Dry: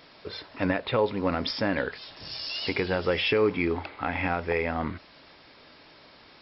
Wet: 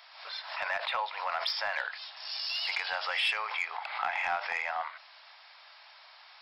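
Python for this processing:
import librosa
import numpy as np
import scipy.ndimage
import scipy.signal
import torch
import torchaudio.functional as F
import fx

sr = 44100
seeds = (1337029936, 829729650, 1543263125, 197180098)

y = scipy.signal.sosfilt(scipy.signal.butter(8, 690.0, 'highpass', fs=sr, output='sos'), x)
y = 10.0 ** (-19.5 / 20.0) * np.tanh(y / 10.0 ** (-19.5 / 20.0))
y = fx.pre_swell(y, sr, db_per_s=70.0)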